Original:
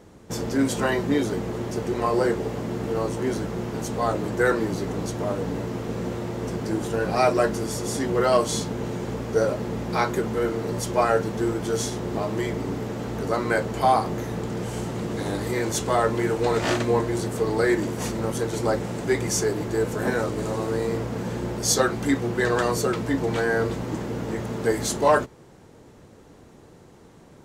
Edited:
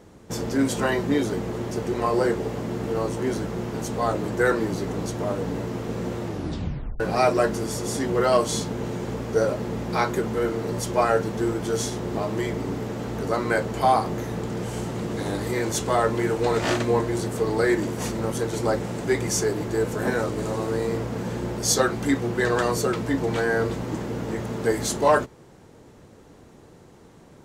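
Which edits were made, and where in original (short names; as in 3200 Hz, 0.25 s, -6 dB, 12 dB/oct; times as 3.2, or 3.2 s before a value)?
6.26 tape stop 0.74 s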